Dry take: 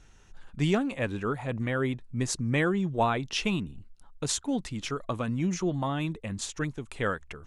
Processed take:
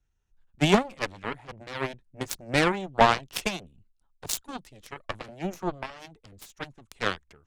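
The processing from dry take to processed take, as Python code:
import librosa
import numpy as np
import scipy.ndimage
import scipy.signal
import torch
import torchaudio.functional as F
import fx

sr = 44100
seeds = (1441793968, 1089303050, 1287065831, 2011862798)

y = fx.cheby_harmonics(x, sr, harmonics=(6, 7), levels_db=(-22, -15), full_scale_db=-12.0)
y = fx.band_widen(y, sr, depth_pct=40)
y = y * 10.0 ** (3.5 / 20.0)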